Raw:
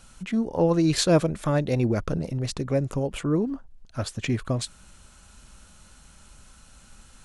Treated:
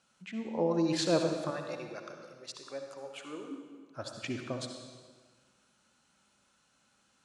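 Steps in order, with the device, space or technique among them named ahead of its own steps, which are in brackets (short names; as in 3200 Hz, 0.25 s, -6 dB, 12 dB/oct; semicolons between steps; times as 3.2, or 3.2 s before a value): 1.5–3.51 HPF 1100 Hz 6 dB/oct; spectral noise reduction 7 dB; supermarket ceiling speaker (BPF 210–6800 Hz; reverb RT60 1.4 s, pre-delay 58 ms, DRR 4 dB); gain -8 dB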